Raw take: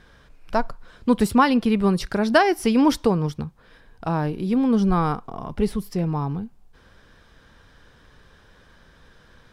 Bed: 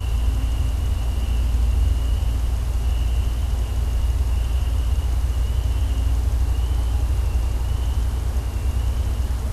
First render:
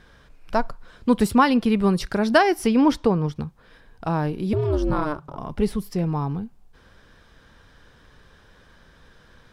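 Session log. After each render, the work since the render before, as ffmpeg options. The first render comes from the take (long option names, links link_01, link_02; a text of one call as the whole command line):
ffmpeg -i in.wav -filter_complex "[0:a]asettb=1/sr,asplit=3[link_01][link_02][link_03];[link_01]atrim=end=2.674[link_04];[link_02]atrim=start=2.67:end=3.36,asetpts=PTS-STARTPTS,afade=type=in:duration=0.004:curve=qsin,afade=type=out:start_time=0.686:duration=0.004:curve=qsin,lowpass=frequency=3300:poles=1[link_05];[link_03]atrim=start=3.356[link_06];[link_04][link_05]acrossfade=duration=0.004:curve1=hsin:curve2=qsin[link_07];[link_07][link_06]acrossfade=duration=0.004:curve1=qsin:curve2=hsin,asettb=1/sr,asplit=3[link_08][link_09][link_10];[link_08]atrim=end=4.534[link_11];[link_09]atrim=start=4.53:end=5.37,asetpts=PTS-STARTPTS,afade=type=in:duration=0.004:curve=qsin,afade=type=out:start_time=0.836:duration=0.004:curve=qsin,aeval=exprs='val(0)*sin(2*PI*150*n/s)':channel_layout=same[link_12];[link_10]atrim=start=5.366[link_13];[link_11][link_12]acrossfade=duration=0.004:curve1=hsin:curve2=qsin[link_14];[link_14][link_13]acrossfade=duration=0.004:curve1=qsin:curve2=hsin" out.wav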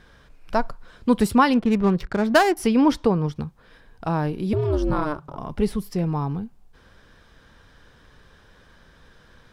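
ffmpeg -i in.wav -filter_complex "[0:a]asettb=1/sr,asplit=3[link_01][link_02][link_03];[link_01]atrim=end=1.534[link_04];[link_02]atrim=start=1.53:end=2.57,asetpts=PTS-STARTPTS,afade=type=in:duration=0.004:curve=qsin,afade=type=out:start_time=1.036:duration=0.004:curve=qsin,adynamicsmooth=sensitivity=3.5:basefreq=740[link_05];[link_03]atrim=start=2.566[link_06];[link_04][link_05]acrossfade=duration=0.004:curve1=hsin:curve2=qsin[link_07];[link_07][link_06]acrossfade=duration=0.004:curve1=qsin:curve2=hsin" out.wav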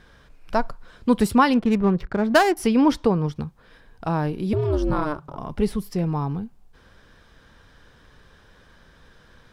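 ffmpeg -i in.wav -filter_complex "[0:a]asettb=1/sr,asplit=3[link_01][link_02][link_03];[link_01]atrim=end=1.794[link_04];[link_02]atrim=start=1.79:end=2.31,asetpts=PTS-STARTPTS,afade=type=in:duration=0.004:curve=qsin,afade=type=out:start_time=0.516:duration=0.004:curve=qsin,highshelf=frequency=3400:gain=-11[link_05];[link_03]atrim=start=2.306[link_06];[link_04][link_05]acrossfade=duration=0.004:curve1=hsin:curve2=qsin[link_07];[link_07][link_06]acrossfade=duration=0.004:curve1=qsin:curve2=hsin" out.wav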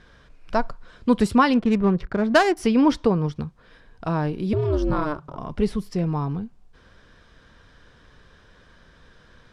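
ffmpeg -i in.wav -af "lowpass=7900,bandreject=frequency=830:width=14" out.wav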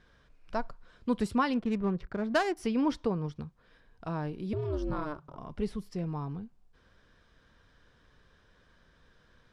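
ffmpeg -i in.wav -af "volume=-10.5dB" out.wav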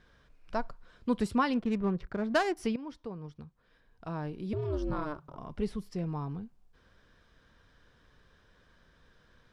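ffmpeg -i in.wav -filter_complex "[0:a]asplit=2[link_01][link_02];[link_01]atrim=end=2.76,asetpts=PTS-STARTPTS,afade=type=out:start_time=2.756:duration=0.004:curve=hsin:silence=0.149624[link_03];[link_02]atrim=start=2.76,asetpts=PTS-STARTPTS,afade=type=in:duration=1.95:silence=0.149624[link_04];[link_03][link_04]concat=n=2:v=0:a=1" out.wav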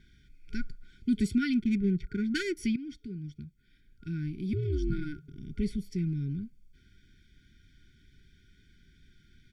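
ffmpeg -i in.wav -af "afftfilt=real='re*(1-between(b*sr/4096,420,1400))':imag='im*(1-between(b*sr/4096,420,1400))':win_size=4096:overlap=0.75,aecho=1:1:0.9:0.87" out.wav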